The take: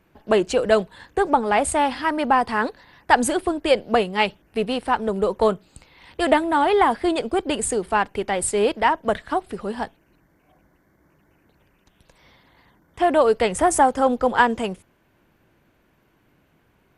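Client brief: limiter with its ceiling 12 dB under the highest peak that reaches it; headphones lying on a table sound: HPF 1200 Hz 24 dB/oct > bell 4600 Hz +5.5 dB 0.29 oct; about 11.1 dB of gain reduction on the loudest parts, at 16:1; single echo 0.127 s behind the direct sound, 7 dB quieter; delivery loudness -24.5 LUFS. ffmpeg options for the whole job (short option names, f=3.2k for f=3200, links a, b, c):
-af "acompressor=threshold=-22dB:ratio=16,alimiter=limit=-22.5dB:level=0:latency=1,highpass=f=1.2k:w=0.5412,highpass=f=1.2k:w=1.3066,equalizer=f=4.6k:t=o:w=0.29:g=5.5,aecho=1:1:127:0.447,volume=13.5dB"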